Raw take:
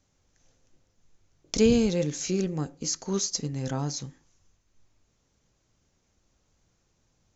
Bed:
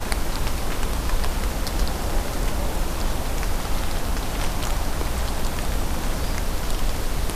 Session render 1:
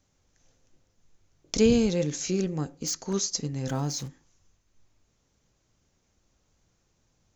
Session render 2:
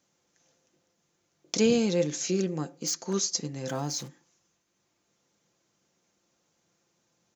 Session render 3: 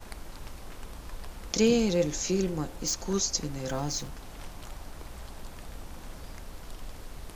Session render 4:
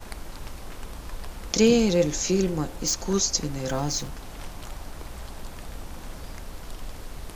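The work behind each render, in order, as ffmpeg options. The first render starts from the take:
-filter_complex "[0:a]asettb=1/sr,asplit=3[s0][s1][s2];[s0]atrim=end=1.704[s3];[s1]atrim=start=1.7:end=2.16,asetpts=PTS-STARTPTS,afade=t=in:d=0.004:c=qsin,afade=t=out:st=0.456:d=0.004:c=qsin,acompressor=mode=upward:threshold=0.0501:ratio=2.5:attack=3.2:release=140:knee=2.83:detection=peak[s4];[s2]atrim=start=2.156[s5];[s3][s4]acrossfade=d=0.004:c1=hsin:c2=qsin[s6];[s6][s5]acrossfade=d=0.004:c1=qsin:c2=hsin,asettb=1/sr,asplit=3[s7][s8][s9];[s7]atrim=end=2.674[s10];[s8]atrim=start=2.67:end=3.13,asetpts=PTS-STARTPTS,afade=t=in:d=0.004:c=qsin,afade=t=out:st=0.456:d=0.004:c=qsin,aeval=exprs='0.0708*(abs(mod(val(0)/0.0708+3,4)-2)-1)':c=same[s11];[s9]atrim=start=3.126[s12];[s10][s11]acrossfade=d=0.004:c1=hsin:c2=qsin[s13];[s13][s12]acrossfade=d=0.004:c1=qsin:c2=hsin,asettb=1/sr,asplit=3[s14][s15][s16];[s14]atrim=end=3.684[s17];[s15]atrim=start=3.68:end=4.08,asetpts=PTS-STARTPTS,afade=t=in:d=0.004:c=qsin,afade=t=out:st=0.396:d=0.004:c=qsin,aeval=exprs='val(0)+0.5*0.00841*sgn(val(0))':c=same[s18];[s16]atrim=start=4.076[s19];[s17][s18]acrossfade=d=0.004:c1=hsin:c2=qsin[s20];[s20][s19]acrossfade=d=0.004:c1=qsin:c2=hsin"
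-af "highpass=200,aecho=1:1:5.8:0.35"
-filter_complex "[1:a]volume=0.126[s0];[0:a][s0]amix=inputs=2:normalize=0"
-af "volume=1.68"

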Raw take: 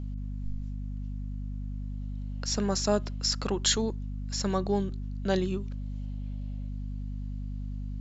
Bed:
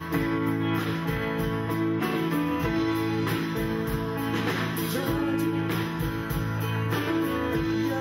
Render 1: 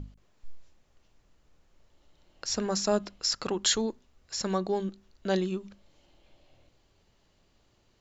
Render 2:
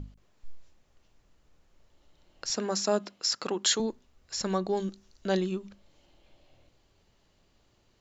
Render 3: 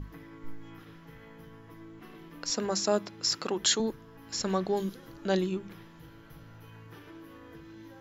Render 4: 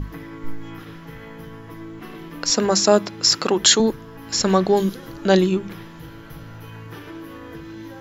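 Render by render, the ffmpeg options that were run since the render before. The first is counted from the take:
-af "bandreject=f=50:t=h:w=6,bandreject=f=100:t=h:w=6,bandreject=f=150:t=h:w=6,bandreject=f=200:t=h:w=6,bandreject=f=250:t=h:w=6"
-filter_complex "[0:a]asettb=1/sr,asplit=3[s0][s1][s2];[s0]atrim=end=2.504[s3];[s1]atrim=start=2.5:end=3.8,asetpts=PTS-STARTPTS,afade=t=in:d=0.004:c=qsin,afade=t=out:st=1.296:d=0.004:c=qsin,highpass=200[s4];[s2]atrim=start=3.796[s5];[s3][s4]acrossfade=d=0.004:c1=hsin:c2=qsin[s6];[s6][s5]acrossfade=d=0.004:c1=qsin:c2=hsin,asettb=1/sr,asplit=3[s7][s8][s9];[s7]atrim=end=4.774[s10];[s8]atrim=start=4.77:end=5.26,asetpts=PTS-STARTPTS,afade=t=in:d=0.004:c=qsin,afade=t=out:st=0.486:d=0.004:c=qsin,equalizer=f=6000:w=1.3:g=9.5[s11];[s9]atrim=start=5.256[s12];[s10][s11]acrossfade=d=0.004:c1=hsin:c2=qsin[s13];[s13][s12]acrossfade=d=0.004:c1=qsin:c2=hsin"
-filter_complex "[1:a]volume=0.075[s0];[0:a][s0]amix=inputs=2:normalize=0"
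-af "volume=3.98,alimiter=limit=0.794:level=0:latency=1"

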